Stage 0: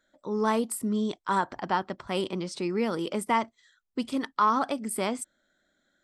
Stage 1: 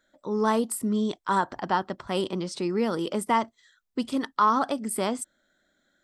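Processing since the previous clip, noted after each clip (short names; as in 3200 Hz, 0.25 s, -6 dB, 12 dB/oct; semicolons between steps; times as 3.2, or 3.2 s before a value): dynamic EQ 2300 Hz, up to -7 dB, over -53 dBFS, Q 4.5; gain +2 dB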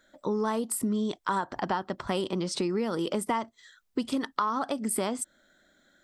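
compressor 6:1, threshold -32 dBFS, peak gain reduction 14.5 dB; gain +6 dB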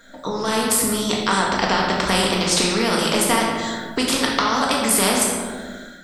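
shoebox room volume 420 m³, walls mixed, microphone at 1.7 m; AGC gain up to 11 dB; spectral compressor 2:1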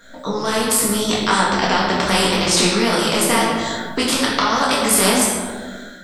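detuned doubles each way 28 cents; gain +6 dB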